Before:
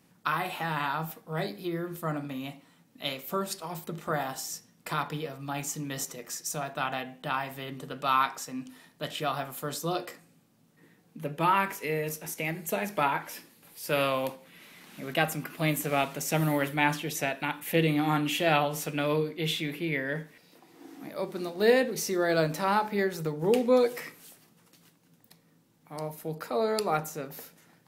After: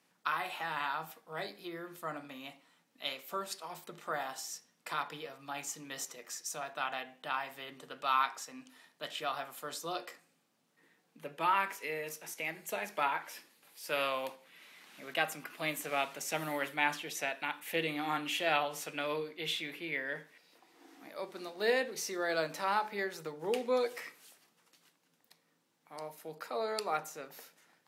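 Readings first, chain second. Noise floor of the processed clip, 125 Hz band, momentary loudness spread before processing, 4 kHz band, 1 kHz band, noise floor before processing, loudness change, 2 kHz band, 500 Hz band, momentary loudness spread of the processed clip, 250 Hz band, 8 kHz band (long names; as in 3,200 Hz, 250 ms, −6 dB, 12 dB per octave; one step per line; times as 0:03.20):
−75 dBFS, −18.5 dB, 14 LU, −4.0 dB, −5.0 dB, −64 dBFS, −6.5 dB, −4.0 dB, −8.0 dB, 15 LU, −13.0 dB, −6.0 dB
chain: meter weighting curve A
level −5 dB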